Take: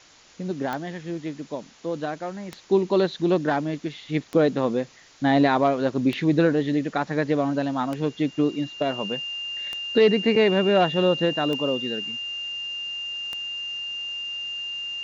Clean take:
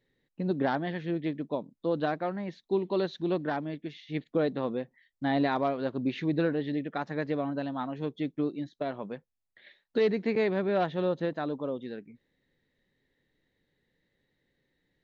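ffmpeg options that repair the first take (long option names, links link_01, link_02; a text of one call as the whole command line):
ffmpeg -i in.wav -af "adeclick=threshold=4,bandreject=frequency=2800:width=30,afwtdn=0.0035,asetnsamples=nb_out_samples=441:pad=0,asendcmd='2.52 volume volume -8dB',volume=0dB" out.wav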